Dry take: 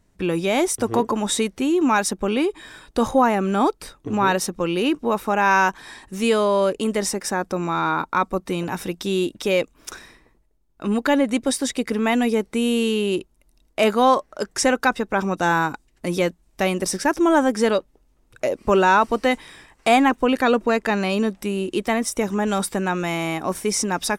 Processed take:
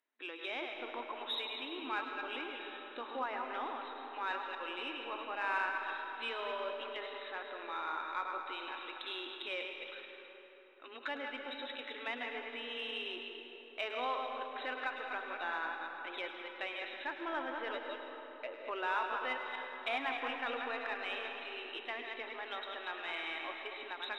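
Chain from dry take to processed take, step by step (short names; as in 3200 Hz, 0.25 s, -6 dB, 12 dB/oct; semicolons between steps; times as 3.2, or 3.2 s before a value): reverse delay 0.123 s, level -5.5 dB; low-pass opened by the level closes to 2100 Hz; FFT band-pass 230–4100 Hz; treble ducked by the level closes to 2300 Hz, closed at -17.5 dBFS; differentiator; in parallel at -9 dB: soft clip -33.5 dBFS, distortion -10 dB; on the sum: thin delay 0.105 s, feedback 72%, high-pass 1600 Hz, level -12 dB; on a send at -4.5 dB: reverb RT60 4.2 s, pre-delay 95 ms; on the sum: ending taper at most 200 dB/s; gain -4 dB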